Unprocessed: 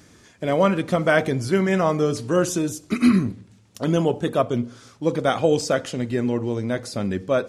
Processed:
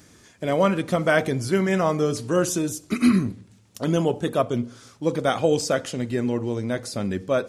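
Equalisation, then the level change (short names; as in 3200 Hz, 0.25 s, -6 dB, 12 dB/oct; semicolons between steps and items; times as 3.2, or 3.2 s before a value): high shelf 7600 Hz +6 dB; -1.5 dB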